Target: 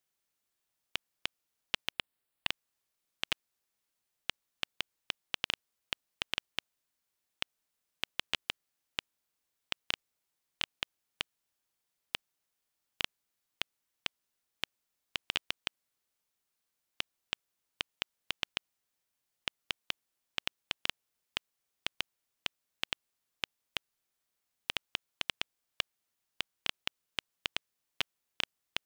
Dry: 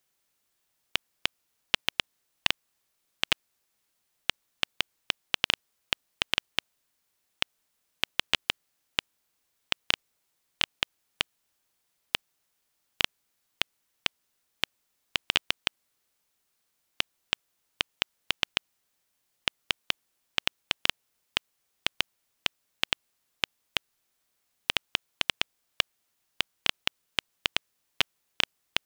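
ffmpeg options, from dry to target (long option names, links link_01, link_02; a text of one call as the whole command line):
ffmpeg -i in.wav -filter_complex "[0:a]asettb=1/sr,asplit=3[link_01][link_02][link_03];[link_01]atrim=end=1.924[link_04];[link_02]atrim=start=1.92:end=2.48,asetpts=PTS-STARTPTS,afade=type=in:duration=0.004:curve=qsin,afade=type=out:start_time=0.556:duration=0.004:curve=qsin,equalizer=frequency=6100:width_type=o:width=0.4:gain=-13[link_05];[link_03]atrim=start=2.476[link_06];[link_04][link_05]acrossfade=duration=0.004:curve1=hsin:curve2=qsin[link_07];[link_07][link_06]acrossfade=duration=0.004:curve1=qsin:curve2=hsin,volume=-8dB" out.wav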